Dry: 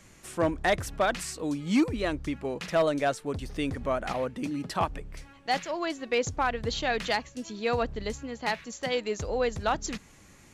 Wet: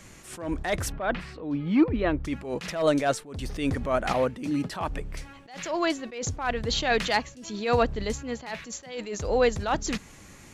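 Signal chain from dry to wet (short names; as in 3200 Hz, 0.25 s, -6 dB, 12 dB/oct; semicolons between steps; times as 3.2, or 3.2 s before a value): 0.92–2.25 air absorption 390 m; attack slew limiter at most 100 dB/s; gain +6 dB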